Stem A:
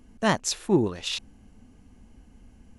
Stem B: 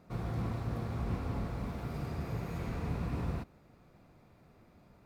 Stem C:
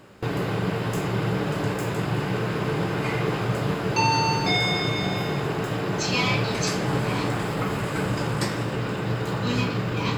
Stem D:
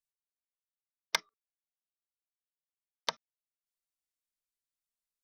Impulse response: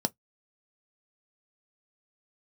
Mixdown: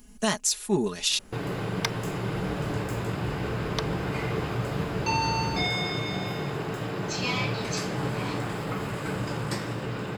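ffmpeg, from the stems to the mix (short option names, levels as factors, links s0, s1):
-filter_complex "[0:a]aecho=1:1:4.8:0.81,crystalizer=i=4.5:c=0,volume=0.316[s0];[1:a]alimiter=level_in=3.35:limit=0.0631:level=0:latency=1,volume=0.299,adelay=2250,volume=0.75[s1];[2:a]adelay=1100,volume=0.562[s2];[3:a]adelay=700,volume=0.473[s3];[s0][s1][s3]amix=inputs=3:normalize=0,acontrast=86,alimiter=limit=0.211:level=0:latency=1:release=464,volume=1[s4];[s2][s4]amix=inputs=2:normalize=0"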